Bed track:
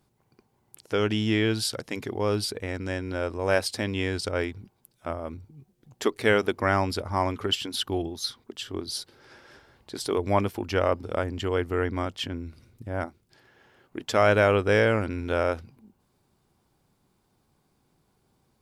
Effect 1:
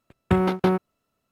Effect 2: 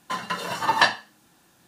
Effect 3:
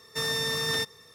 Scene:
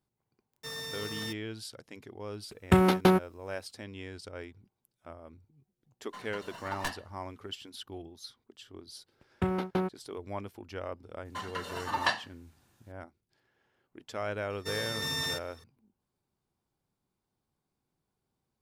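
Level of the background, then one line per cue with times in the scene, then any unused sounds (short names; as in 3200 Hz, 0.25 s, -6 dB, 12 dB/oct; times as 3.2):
bed track -15 dB
0.48 add 3 -11 dB + bit-crush 7-bit
2.41 add 1 -1.5 dB + high shelf 4000 Hz +11.5 dB
6.03 add 2 -17.5 dB + tracing distortion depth 0.13 ms
9.11 add 1 -9.5 dB
11.25 add 2 -10 dB
14.5 add 3 -7.5 dB + reverse delay 0.521 s, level -0.5 dB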